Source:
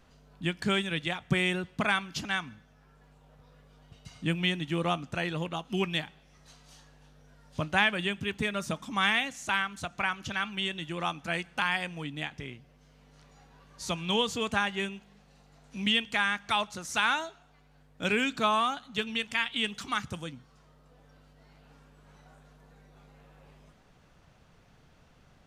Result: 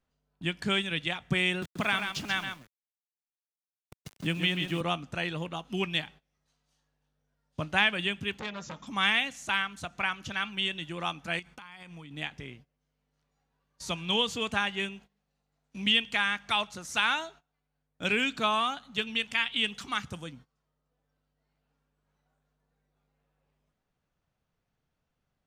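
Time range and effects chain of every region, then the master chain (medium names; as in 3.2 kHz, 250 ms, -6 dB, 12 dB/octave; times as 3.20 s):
1.62–4.81 s: small samples zeroed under -43 dBFS + delay 133 ms -7.5 dB + three bands compressed up and down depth 40%
8.39–8.87 s: brick-wall FIR low-pass 7.5 kHz + transformer saturation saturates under 2 kHz
11.39–12.11 s: comb 0.9 ms, depth 32% + compression 20:1, threshold -40 dBFS
whole clip: gate -49 dBFS, range -19 dB; dynamic bell 2.9 kHz, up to +5 dB, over -39 dBFS, Q 1.4; trim -2 dB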